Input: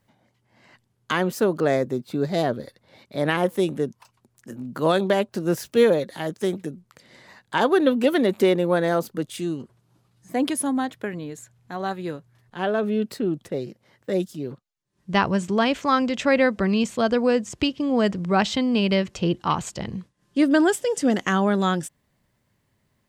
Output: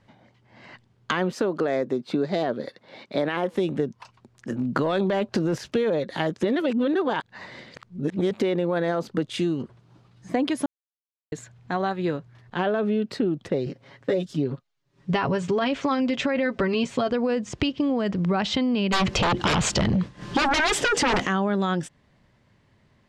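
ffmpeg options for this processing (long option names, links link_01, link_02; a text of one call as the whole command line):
ffmpeg -i in.wav -filter_complex "[0:a]asettb=1/sr,asplit=3[link_01][link_02][link_03];[link_01]atrim=end=1.344[link_04];[link_02]atrim=start=1.34:end=3.54,asetpts=PTS-STARTPTS,afade=type=in:duration=0.004:curve=qsin,afade=type=out:start_time=2.196:duration=0.004:curve=qsin,highpass=200[link_05];[link_03]atrim=start=3.536[link_06];[link_04][link_05]acrossfade=duration=0.004:curve1=hsin:curve2=qsin[link_07];[link_07][link_06]acrossfade=duration=0.004:curve1=qsin:curve2=hsin,asettb=1/sr,asplit=3[link_08][link_09][link_10];[link_08]atrim=end=4.764[link_11];[link_09]atrim=start=4.76:end=5.58,asetpts=PTS-STARTPTS,afade=type=in:duration=0.004:curve=qsin,afade=type=out:start_time=0.816:duration=0.004:curve=qsin,acontrast=65[link_12];[link_10]atrim=start=5.576[link_13];[link_11][link_12]acrossfade=duration=0.004:curve1=hsin:curve2=qsin[link_14];[link_14][link_13]acrossfade=duration=0.004:curve1=qsin:curve2=hsin,asettb=1/sr,asplit=3[link_15][link_16][link_17];[link_15]atrim=end=13.654[link_18];[link_16]atrim=start=13.65:end=17.11,asetpts=PTS-STARTPTS,afade=type=in:duration=0.004:curve=qsin,afade=type=out:start_time=3.456:duration=0.004:curve=qsin,aecho=1:1:7.3:0.7,atrim=end_sample=152586[link_19];[link_17]atrim=start=17.106[link_20];[link_18][link_19]acrossfade=duration=0.004:curve1=hsin:curve2=qsin[link_21];[link_21][link_20]acrossfade=duration=0.004:curve1=qsin:curve2=hsin,asplit=3[link_22][link_23][link_24];[link_22]afade=type=out:start_time=18.92:duration=0.02[link_25];[link_23]aeval=exprs='0.422*sin(PI/2*7.94*val(0)/0.422)':channel_layout=same,afade=type=in:start_time=18.92:duration=0.02,afade=type=out:start_time=21.25:duration=0.02[link_26];[link_24]afade=type=in:start_time=21.25:duration=0.02[link_27];[link_25][link_26][link_27]amix=inputs=3:normalize=0,asplit=5[link_28][link_29][link_30][link_31][link_32];[link_28]atrim=end=6.432[link_33];[link_29]atrim=start=6.428:end=8.312,asetpts=PTS-STARTPTS,areverse[link_34];[link_30]atrim=start=8.308:end=10.66,asetpts=PTS-STARTPTS,afade=type=out:start_time=2.348:duration=0.004:curve=hsin[link_35];[link_31]atrim=start=10.66:end=11.32,asetpts=PTS-STARTPTS,volume=0[link_36];[link_32]atrim=start=11.32,asetpts=PTS-STARTPTS,afade=type=in:duration=0.004:curve=hsin[link_37];[link_33][link_34]acrossfade=duration=0.004:curve1=hsin:curve2=hsin[link_38];[link_35][link_36][link_37]concat=n=3:v=0:a=1[link_39];[link_38][link_39]acrossfade=duration=0.004:curve1=hsin:curve2=hsin,lowpass=4600,alimiter=limit=-14.5dB:level=0:latency=1:release=23,acompressor=threshold=-29dB:ratio=6,volume=8dB" out.wav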